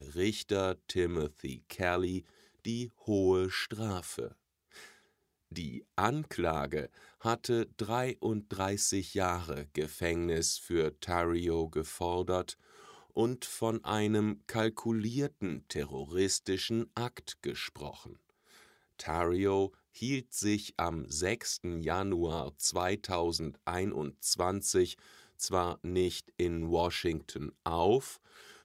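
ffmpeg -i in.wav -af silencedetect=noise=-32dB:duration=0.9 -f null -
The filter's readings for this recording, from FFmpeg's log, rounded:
silence_start: 4.26
silence_end: 5.57 | silence_duration: 1.31
silence_start: 17.89
silence_end: 19.01 | silence_duration: 1.12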